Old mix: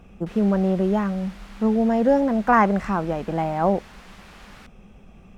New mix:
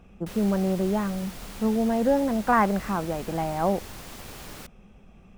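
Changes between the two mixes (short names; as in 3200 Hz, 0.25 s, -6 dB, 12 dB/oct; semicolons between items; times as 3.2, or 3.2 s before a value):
speech -4.0 dB; background: remove band-pass 1600 Hz, Q 0.74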